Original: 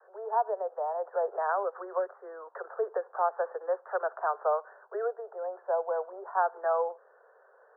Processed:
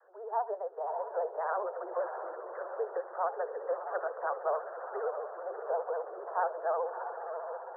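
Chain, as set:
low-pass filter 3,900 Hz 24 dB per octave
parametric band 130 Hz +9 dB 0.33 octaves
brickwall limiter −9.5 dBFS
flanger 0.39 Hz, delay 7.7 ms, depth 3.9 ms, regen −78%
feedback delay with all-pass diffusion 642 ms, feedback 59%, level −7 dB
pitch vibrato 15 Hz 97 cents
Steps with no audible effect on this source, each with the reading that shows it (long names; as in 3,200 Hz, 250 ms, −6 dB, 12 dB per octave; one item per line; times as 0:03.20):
low-pass filter 3,900 Hz: nothing at its input above 1,800 Hz
parametric band 130 Hz: nothing at its input below 340 Hz
brickwall limiter −9.5 dBFS: peak of its input −15.5 dBFS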